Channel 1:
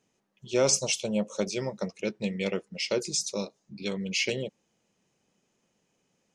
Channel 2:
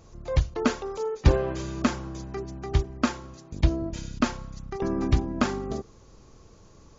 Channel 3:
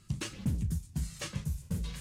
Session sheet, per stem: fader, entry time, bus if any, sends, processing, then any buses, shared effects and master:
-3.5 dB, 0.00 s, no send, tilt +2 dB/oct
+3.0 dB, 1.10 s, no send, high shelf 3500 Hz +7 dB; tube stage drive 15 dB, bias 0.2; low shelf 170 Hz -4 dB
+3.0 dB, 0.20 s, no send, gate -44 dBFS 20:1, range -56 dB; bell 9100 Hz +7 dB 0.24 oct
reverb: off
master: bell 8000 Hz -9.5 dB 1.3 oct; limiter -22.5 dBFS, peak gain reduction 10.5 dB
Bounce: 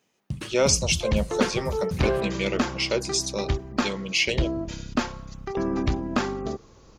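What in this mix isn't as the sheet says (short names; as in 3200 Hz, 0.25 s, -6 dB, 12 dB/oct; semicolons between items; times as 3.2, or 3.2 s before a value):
stem 1 -3.5 dB -> +4.5 dB; stem 2: entry 1.10 s -> 0.75 s; master: missing limiter -22.5 dBFS, peak gain reduction 10.5 dB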